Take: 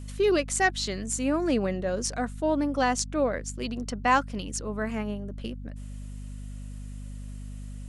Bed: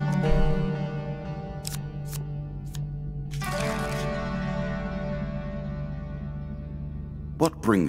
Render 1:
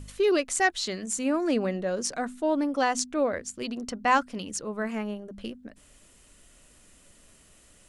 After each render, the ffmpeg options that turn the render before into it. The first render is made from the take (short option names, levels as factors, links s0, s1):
-af "bandreject=f=50:t=h:w=4,bandreject=f=100:t=h:w=4,bandreject=f=150:t=h:w=4,bandreject=f=200:t=h:w=4,bandreject=f=250:t=h:w=4"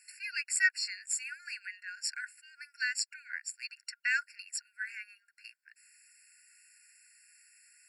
-af "afftfilt=real='re*eq(mod(floor(b*sr/1024/1400),2),1)':imag='im*eq(mod(floor(b*sr/1024/1400),2),1)':win_size=1024:overlap=0.75"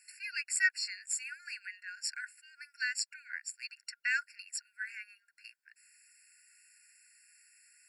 -af "volume=0.841"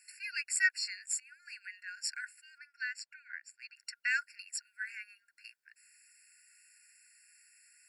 -filter_complex "[0:a]asettb=1/sr,asplit=3[s0][s1][s2];[s0]atrim=end=2.584[s3];[s1]atrim=start=2.58:end=3.75,asetpts=PTS-STARTPTS,afade=t=in:d=0.004:c=qsin,afade=t=out:st=1.166:d=0.004:c=qsin,lowpass=f=1600:p=1[s4];[s2]atrim=start=3.746[s5];[s3][s4]acrossfade=d=0.004:c1=hsin:c2=qsin[s6];[s6][s5]acrossfade=d=0.004:c1=qsin:c2=hsin,asplit=2[s7][s8];[s7]atrim=end=1.2,asetpts=PTS-STARTPTS,afade=t=out:st=1.196:d=0.004:c=hsin:silence=0.0944061[s9];[s8]atrim=start=1.2,asetpts=PTS-STARTPTS,afade=t=in:d=0.63:silence=0.0944061[s10];[s9][s10]concat=n=2:v=0:a=1"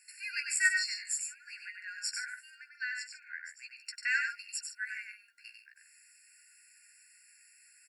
-filter_complex "[0:a]asplit=2[s0][s1];[s1]adelay=14,volume=0.447[s2];[s0][s2]amix=inputs=2:normalize=0,asplit=2[s3][s4];[s4]aecho=0:1:96.21|142.9:0.562|0.251[s5];[s3][s5]amix=inputs=2:normalize=0"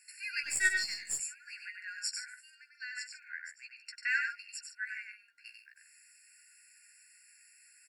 -filter_complex "[0:a]asettb=1/sr,asplit=3[s0][s1][s2];[s0]atrim=end=0.434[s3];[s1]atrim=start=0.43:end=1.2,asetpts=PTS-STARTPTS,afade=t=in:d=0.004:c=qsin,afade=t=out:st=0.766:d=0.004:c=qsin,aeval=exprs='if(lt(val(0),0),0.708*val(0),val(0))':c=same[s4];[s2]atrim=start=1.196[s5];[s3][s4]acrossfade=d=0.004:c1=hsin:c2=qsin[s6];[s6][s5]acrossfade=d=0.004:c1=qsin:c2=hsin,asettb=1/sr,asplit=3[s7][s8][s9];[s7]atrim=end=2.084[s10];[s8]atrim=start=2.08:end=2.97,asetpts=PTS-STARTPTS,afade=t=in:d=0.004:c=qsin,afade=t=out:st=0.886:d=0.004:c=qsin,bandpass=f=6200:t=q:w=0.52[s11];[s9]atrim=start=2.966[s12];[s10][s11]acrossfade=d=0.004:c1=hsin:c2=qsin[s13];[s13][s12]acrossfade=d=0.004:c1=qsin:c2=hsin,asettb=1/sr,asplit=3[s14][s15][s16];[s14]atrim=end=3.514[s17];[s15]atrim=start=3.51:end=5.46,asetpts=PTS-STARTPTS,afade=t=in:d=0.004:c=qsin,afade=t=out:st=1.946:d=0.004:c=qsin,highshelf=f=6100:g=-10[s18];[s16]atrim=start=5.456[s19];[s17][s18]acrossfade=d=0.004:c1=hsin:c2=qsin[s20];[s20][s19]acrossfade=d=0.004:c1=qsin:c2=hsin"